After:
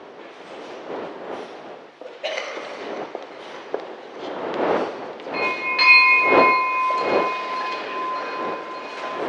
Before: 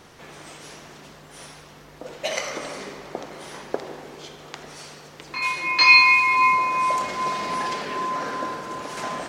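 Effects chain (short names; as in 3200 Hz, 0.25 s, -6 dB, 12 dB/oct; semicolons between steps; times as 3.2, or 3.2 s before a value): wind noise 580 Hz -27 dBFS; Chebyshev band-pass 390–3500 Hz, order 2; thin delay 0.591 s, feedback 70%, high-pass 2200 Hz, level -16 dB; gain +1 dB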